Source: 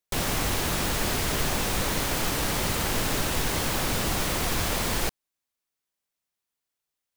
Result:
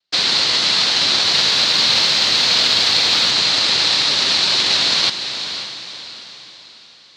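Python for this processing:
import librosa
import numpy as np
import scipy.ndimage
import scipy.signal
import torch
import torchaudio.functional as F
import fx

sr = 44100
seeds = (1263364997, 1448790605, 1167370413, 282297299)

y = fx.peak_eq(x, sr, hz=2300.0, db=13.5, octaves=1.5)
y = fx.noise_vocoder(y, sr, seeds[0], bands=1)
y = fx.lowpass_res(y, sr, hz=4200.0, q=5.1)
y = fx.echo_diffused(y, sr, ms=530, feedback_pct=43, wet_db=-9.0)
y = fx.echo_crushed(y, sr, ms=108, feedback_pct=80, bits=7, wet_db=-12, at=(1.13, 3.31))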